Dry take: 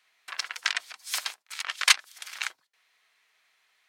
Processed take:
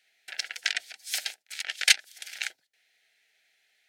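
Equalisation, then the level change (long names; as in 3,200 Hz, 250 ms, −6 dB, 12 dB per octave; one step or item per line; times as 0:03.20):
Butterworth band-reject 1,100 Hz, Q 1.5
0.0 dB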